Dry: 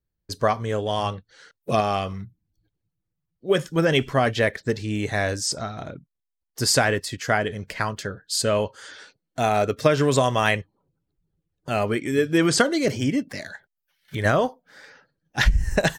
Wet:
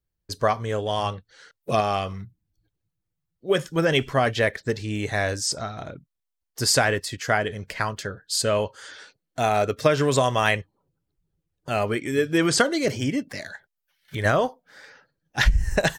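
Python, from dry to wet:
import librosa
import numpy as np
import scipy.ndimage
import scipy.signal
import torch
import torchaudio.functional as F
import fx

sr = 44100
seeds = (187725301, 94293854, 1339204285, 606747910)

y = fx.peak_eq(x, sr, hz=220.0, db=-3.0, octaves=1.5)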